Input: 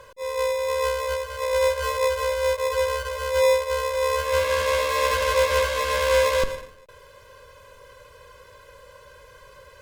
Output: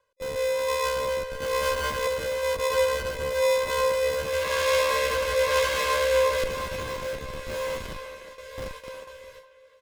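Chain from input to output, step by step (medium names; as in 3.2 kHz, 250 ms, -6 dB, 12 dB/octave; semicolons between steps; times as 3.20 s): 1.36–2.07 s: comb filter that takes the minimum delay 0.65 ms; bass shelf 320 Hz -7.5 dB; on a send: echo that smears into a reverb 1398 ms, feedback 51%, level -12 dB; on the sum: gate with hold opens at -30 dBFS; rotary cabinet horn 1 Hz; in parallel at -8 dB: Schmitt trigger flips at -31.5 dBFS; on the sum: speakerphone echo 360 ms, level -10 dB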